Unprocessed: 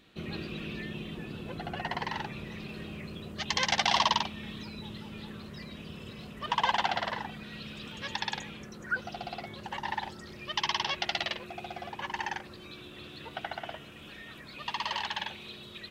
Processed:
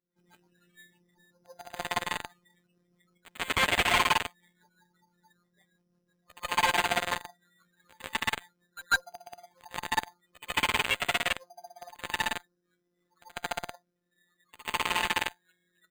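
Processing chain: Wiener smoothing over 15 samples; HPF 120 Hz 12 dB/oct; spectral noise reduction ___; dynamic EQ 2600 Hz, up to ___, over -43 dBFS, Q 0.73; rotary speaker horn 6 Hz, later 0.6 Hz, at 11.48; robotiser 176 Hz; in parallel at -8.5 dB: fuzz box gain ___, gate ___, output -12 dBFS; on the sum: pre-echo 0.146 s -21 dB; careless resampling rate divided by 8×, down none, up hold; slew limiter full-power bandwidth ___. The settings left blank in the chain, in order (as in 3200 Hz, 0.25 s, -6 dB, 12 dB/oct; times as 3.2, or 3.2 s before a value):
25 dB, +6 dB, 41 dB, -35 dBFS, 390 Hz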